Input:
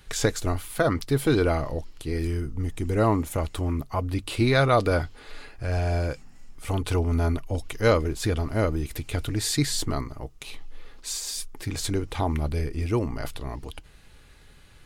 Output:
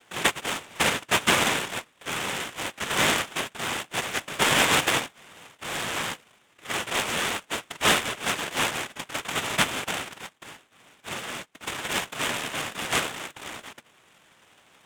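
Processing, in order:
0:05.19–0:05.96: parametric band 380 Hz −7 dB 2.1 octaves
cochlear-implant simulation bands 1
downsampling to 8,000 Hz
short delay modulated by noise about 4,500 Hz, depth 0.037 ms
level +2.5 dB

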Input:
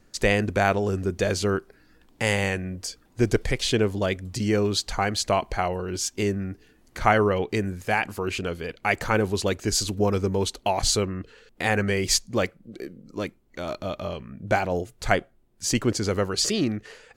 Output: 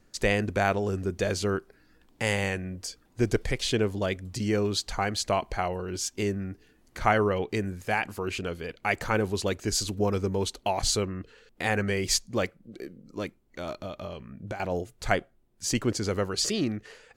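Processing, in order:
0:13.70–0:14.60: downward compressor 16 to 1, threshold −29 dBFS, peak gain reduction 13.5 dB
level −3.5 dB

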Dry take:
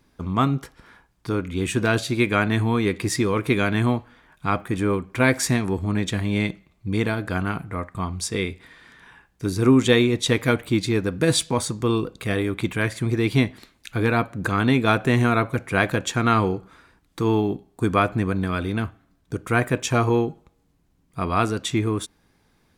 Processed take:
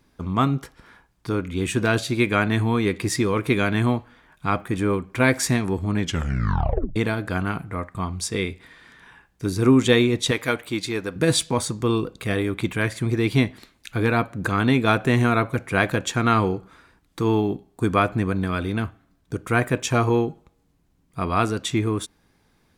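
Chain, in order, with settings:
0:05.99: tape stop 0.97 s
0:10.31–0:11.16: low-shelf EQ 290 Hz −11.5 dB

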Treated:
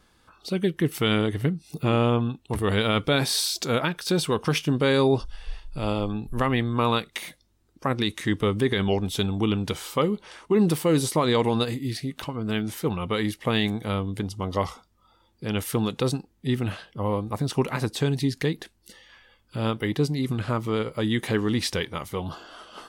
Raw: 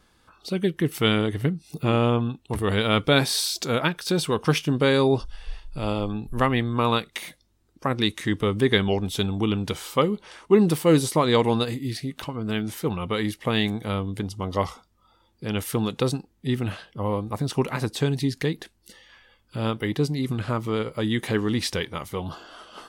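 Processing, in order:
brickwall limiter −12 dBFS, peak gain reduction 7.5 dB

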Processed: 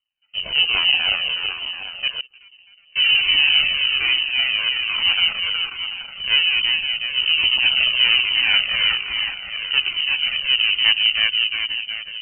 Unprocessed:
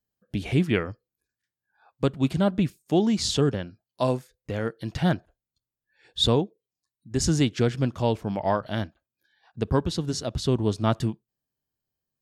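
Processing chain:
feedback delay that plays each chunk backwards 184 ms, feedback 72%, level −2 dB
high-shelf EQ 2,300 Hz −10 dB
on a send: delay with a high-pass on its return 531 ms, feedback 34%, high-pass 1,400 Hz, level −9.5 dB
on the sum: half-wave rectification
0:02.16–0:02.96: gate with flip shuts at −23 dBFS, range −34 dB
in parallel at −5 dB: hard clipping −17 dBFS, distortion −13 dB
on the sum: transient designer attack −9 dB, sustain +3 dB
voice inversion scrambler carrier 3,000 Hz
flanger whose copies keep moving one way falling 1.2 Hz
level +8 dB

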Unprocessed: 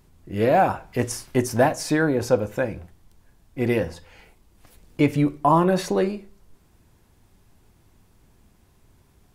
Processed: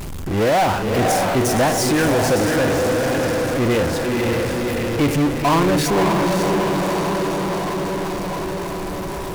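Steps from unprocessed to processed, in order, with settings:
feedback delay with all-pass diffusion 562 ms, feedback 51%, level −5 dB
power curve on the samples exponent 0.35
level −4.5 dB

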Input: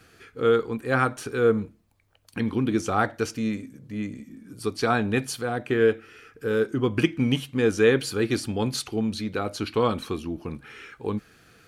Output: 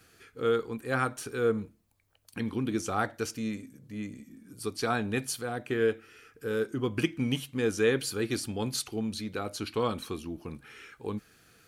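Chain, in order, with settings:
high-shelf EQ 5,800 Hz +9 dB
level −6.5 dB

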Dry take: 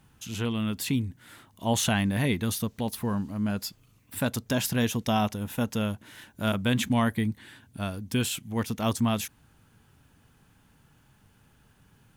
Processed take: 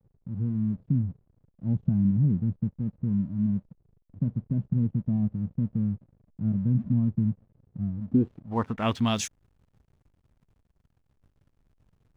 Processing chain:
low-pass filter sweep 170 Hz → 8,100 Hz, 0:07.99–0:09.30
slack as between gear wheels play −47.5 dBFS

